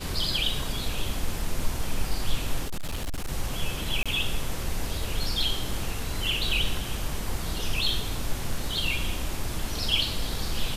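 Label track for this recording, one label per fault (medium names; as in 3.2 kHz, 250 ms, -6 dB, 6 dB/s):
2.670000	3.310000	clipped -26.5 dBFS
4.030000	4.060000	dropout 26 ms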